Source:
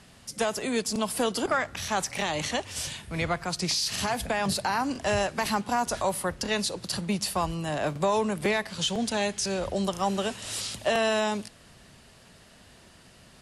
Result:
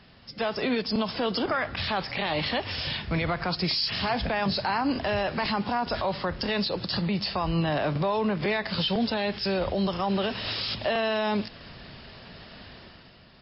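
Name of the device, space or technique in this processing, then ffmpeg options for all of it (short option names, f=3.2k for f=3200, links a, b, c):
low-bitrate web radio: -af "dynaudnorm=f=110:g=11:m=9dB,alimiter=limit=-18dB:level=0:latency=1:release=73" -ar 12000 -c:a libmp3lame -b:a 24k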